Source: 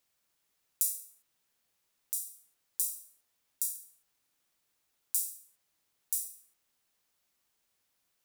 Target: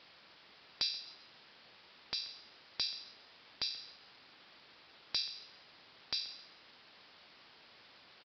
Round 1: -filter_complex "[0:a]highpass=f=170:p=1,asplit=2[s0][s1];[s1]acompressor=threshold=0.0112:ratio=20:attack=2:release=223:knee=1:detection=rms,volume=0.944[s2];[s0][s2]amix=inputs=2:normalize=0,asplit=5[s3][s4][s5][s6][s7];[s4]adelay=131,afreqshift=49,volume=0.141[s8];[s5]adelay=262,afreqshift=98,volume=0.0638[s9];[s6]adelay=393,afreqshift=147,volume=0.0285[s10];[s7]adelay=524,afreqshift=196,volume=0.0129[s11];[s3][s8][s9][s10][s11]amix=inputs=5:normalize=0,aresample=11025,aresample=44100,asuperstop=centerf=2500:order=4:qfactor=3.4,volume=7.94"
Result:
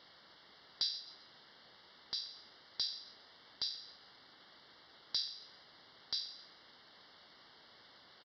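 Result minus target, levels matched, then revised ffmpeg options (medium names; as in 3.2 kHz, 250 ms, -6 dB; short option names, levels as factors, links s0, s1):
compression: peak gain reduction +6 dB; 2 kHz band -5.5 dB
-filter_complex "[0:a]highpass=f=170:p=1,asplit=2[s0][s1];[s1]acompressor=threshold=0.0237:ratio=20:attack=2:release=223:knee=1:detection=rms,volume=0.944[s2];[s0][s2]amix=inputs=2:normalize=0,asplit=5[s3][s4][s5][s6][s7];[s4]adelay=131,afreqshift=49,volume=0.141[s8];[s5]adelay=262,afreqshift=98,volume=0.0638[s9];[s6]adelay=393,afreqshift=147,volume=0.0285[s10];[s7]adelay=524,afreqshift=196,volume=0.0129[s11];[s3][s8][s9][s10][s11]amix=inputs=5:normalize=0,aresample=11025,aresample=44100,volume=7.94"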